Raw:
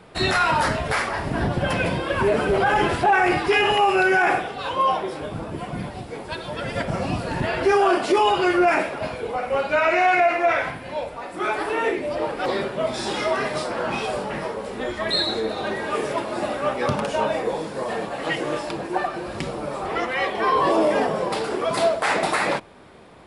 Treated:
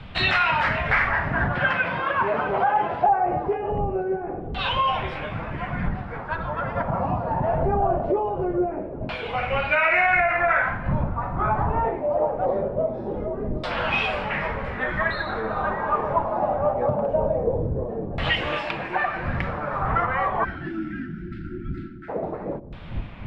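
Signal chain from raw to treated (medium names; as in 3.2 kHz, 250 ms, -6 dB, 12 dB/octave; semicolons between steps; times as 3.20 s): wind noise 170 Hz -32 dBFS; 1.55–3.09 s: frequency weighting D; 20.44–22.09 s: spectral selection erased 380–1300 Hz; peaking EQ 360 Hz -9.5 dB 1.2 oct; compression 3:1, threshold -23 dBFS, peak gain reduction 7.5 dB; LFO low-pass saw down 0.22 Hz 350–3300 Hz; feedback echo behind a band-pass 117 ms, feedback 54%, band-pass 410 Hz, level -18 dB; trim +2 dB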